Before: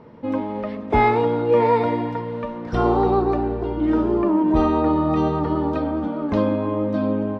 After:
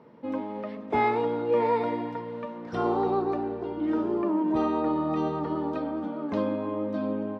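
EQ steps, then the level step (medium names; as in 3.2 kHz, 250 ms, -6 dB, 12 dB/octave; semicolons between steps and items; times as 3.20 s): high-pass 160 Hz 12 dB/octave; -7.0 dB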